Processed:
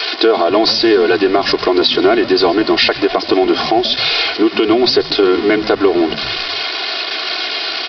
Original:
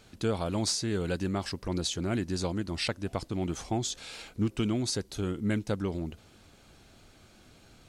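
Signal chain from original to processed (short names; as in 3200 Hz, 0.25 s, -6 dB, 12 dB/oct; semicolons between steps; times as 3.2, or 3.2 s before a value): switching spikes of -26 dBFS; HPF 420 Hz 24 dB/oct; tilt -2.5 dB/oct; comb 2.8 ms, depth 93%; compressor, threshold -33 dBFS, peak gain reduction 10 dB; on a send: frequency-shifting echo 0.135 s, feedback 48%, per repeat -110 Hz, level -18 dB; on the sum: downsampling 11025 Hz; maximiser +27 dB; gain -1 dB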